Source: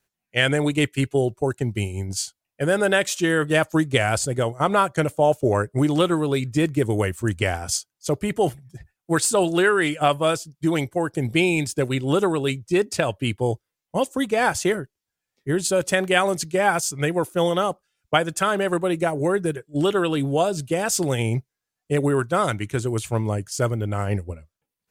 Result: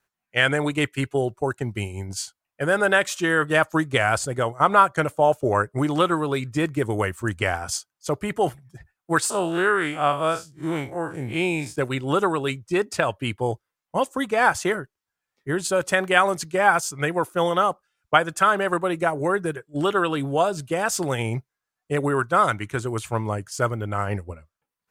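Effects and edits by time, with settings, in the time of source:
0:09.30–0:11.76: spectrum smeared in time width 93 ms
whole clip: parametric band 1,200 Hz +9.5 dB 1.5 octaves; level −4 dB

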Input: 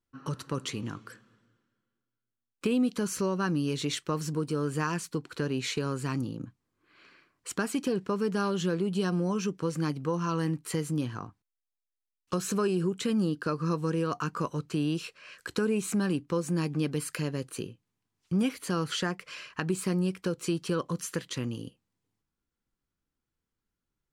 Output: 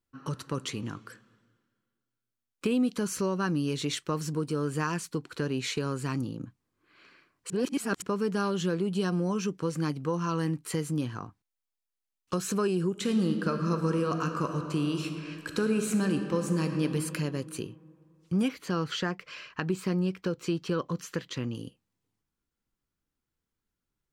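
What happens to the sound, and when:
0:07.50–0:08.02: reverse
0:12.89–0:16.83: thrown reverb, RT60 2.6 s, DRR 5 dB
0:18.48–0:21.55: parametric band 10,000 Hz −14.5 dB

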